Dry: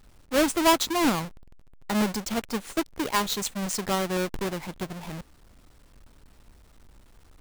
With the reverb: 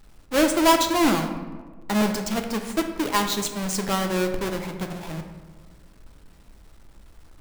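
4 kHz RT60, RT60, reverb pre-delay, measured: 0.75 s, 1.4 s, 3 ms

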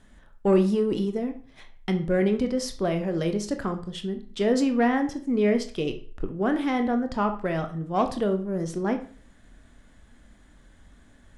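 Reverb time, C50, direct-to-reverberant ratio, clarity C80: 0.45 s, 11.5 dB, 6.5 dB, 16.5 dB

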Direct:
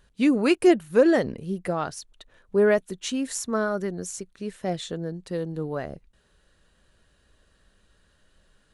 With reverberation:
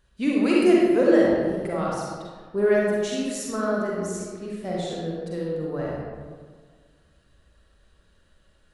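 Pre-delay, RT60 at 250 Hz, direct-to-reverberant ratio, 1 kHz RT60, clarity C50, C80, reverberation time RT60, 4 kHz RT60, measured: 38 ms, 1.9 s, −5.0 dB, 1.6 s, −3.0 dB, 0.0 dB, 1.7 s, 0.90 s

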